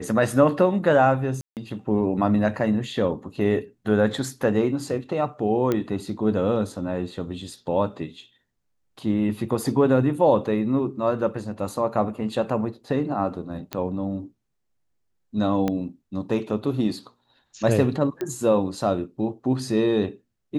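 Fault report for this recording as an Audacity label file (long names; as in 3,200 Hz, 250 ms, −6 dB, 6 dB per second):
1.410000	1.570000	drop-out 158 ms
5.720000	5.720000	click −11 dBFS
13.730000	13.730000	click −13 dBFS
15.680000	15.680000	click −12 dBFS
18.210000	18.210000	click −16 dBFS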